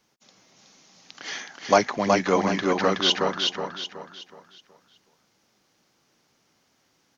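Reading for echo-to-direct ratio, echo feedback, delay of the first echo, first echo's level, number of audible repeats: −3.0 dB, 36%, 371 ms, −3.5 dB, 4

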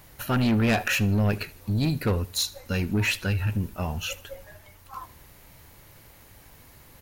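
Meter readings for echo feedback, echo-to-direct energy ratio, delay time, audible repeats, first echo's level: 34%, −20.5 dB, 77 ms, 2, −21.0 dB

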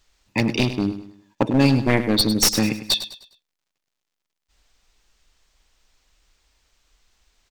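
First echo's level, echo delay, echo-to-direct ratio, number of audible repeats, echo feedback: −12.0 dB, 102 ms, −11.5 dB, 3, 37%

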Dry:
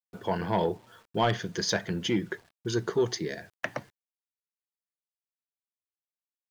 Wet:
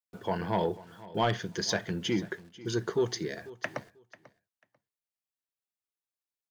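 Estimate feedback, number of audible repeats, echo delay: 18%, 2, 492 ms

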